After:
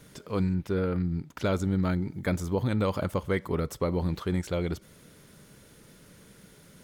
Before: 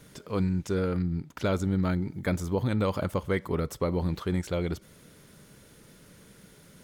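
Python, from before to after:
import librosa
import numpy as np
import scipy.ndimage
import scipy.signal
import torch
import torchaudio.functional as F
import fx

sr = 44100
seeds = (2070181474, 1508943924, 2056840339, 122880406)

y = fx.peak_eq(x, sr, hz=7000.0, db=-14.0, octaves=0.85, at=(0.54, 1.03))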